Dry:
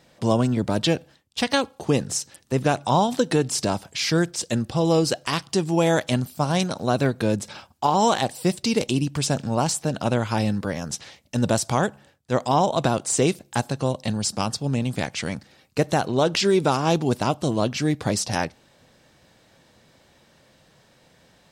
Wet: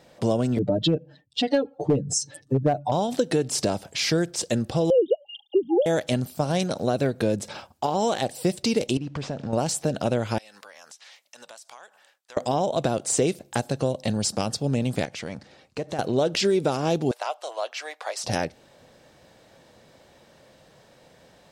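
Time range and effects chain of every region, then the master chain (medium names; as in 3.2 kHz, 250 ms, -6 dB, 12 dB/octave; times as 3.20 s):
0.58–2.92 s: spectral contrast enhancement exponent 2 + comb 6.8 ms, depth 98% + hard clipper -10 dBFS
4.90–5.86 s: formants replaced by sine waves + brick-wall FIR band-stop 840–2800 Hz + comb 2.2 ms, depth 67%
8.97–9.53 s: CVSD coder 64 kbps + compression, threshold -28 dBFS + distance through air 130 m
10.38–12.37 s: high-pass 1.2 kHz + compression 8:1, threshold -44 dBFS
15.05–15.99 s: self-modulated delay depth 0.054 ms + low-pass 8.1 kHz + compression 2.5:1, threshold -35 dBFS
17.11–18.24 s: inverse Chebyshev high-pass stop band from 210 Hz, stop band 60 dB + treble shelf 3.5 kHz -9 dB
whole clip: peaking EQ 560 Hz +6 dB 1.4 oct; compression 2.5:1, threshold -20 dBFS; dynamic bell 1 kHz, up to -7 dB, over -39 dBFS, Q 1.8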